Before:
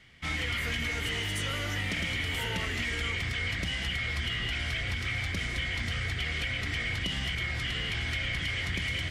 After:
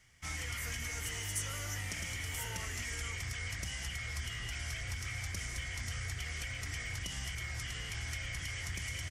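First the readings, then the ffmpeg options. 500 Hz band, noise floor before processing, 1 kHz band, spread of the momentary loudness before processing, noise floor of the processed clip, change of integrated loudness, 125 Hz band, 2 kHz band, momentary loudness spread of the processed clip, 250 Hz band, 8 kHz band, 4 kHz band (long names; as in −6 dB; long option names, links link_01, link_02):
−11.0 dB, −34 dBFS, −7.5 dB, 1 LU, −42 dBFS, −8.0 dB, −6.5 dB, −9.5 dB, 2 LU, −12.5 dB, +4.0 dB, −10.5 dB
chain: -af "firequalizer=gain_entry='entry(110,0);entry(190,-8);entry(870,-1);entry(3800,-7);entry(5700,10)':delay=0.05:min_phase=1,volume=-6dB"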